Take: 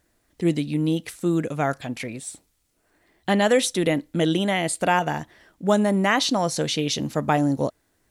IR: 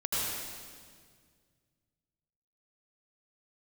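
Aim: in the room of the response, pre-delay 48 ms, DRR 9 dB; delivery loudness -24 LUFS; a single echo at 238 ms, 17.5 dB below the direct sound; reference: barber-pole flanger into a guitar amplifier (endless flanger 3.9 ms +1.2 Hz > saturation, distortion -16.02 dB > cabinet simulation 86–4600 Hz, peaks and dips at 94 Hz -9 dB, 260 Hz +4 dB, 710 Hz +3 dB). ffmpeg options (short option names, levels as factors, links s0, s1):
-filter_complex "[0:a]aecho=1:1:238:0.133,asplit=2[s0][s1];[1:a]atrim=start_sample=2205,adelay=48[s2];[s1][s2]afir=irnorm=-1:irlink=0,volume=0.141[s3];[s0][s3]amix=inputs=2:normalize=0,asplit=2[s4][s5];[s5]adelay=3.9,afreqshift=1.2[s6];[s4][s6]amix=inputs=2:normalize=1,asoftclip=threshold=0.141,highpass=86,equalizer=f=94:t=q:w=4:g=-9,equalizer=f=260:t=q:w=4:g=4,equalizer=f=710:t=q:w=4:g=3,lowpass=f=4600:w=0.5412,lowpass=f=4600:w=1.3066,volume=1.33"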